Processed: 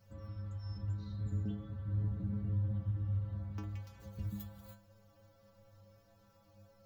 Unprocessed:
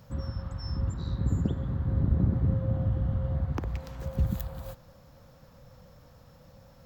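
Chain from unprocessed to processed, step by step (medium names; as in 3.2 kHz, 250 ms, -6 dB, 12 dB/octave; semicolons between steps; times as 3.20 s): dynamic bell 650 Hz, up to -6 dB, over -51 dBFS, Q 1; inharmonic resonator 100 Hz, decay 0.58 s, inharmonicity 0.008; trim +2.5 dB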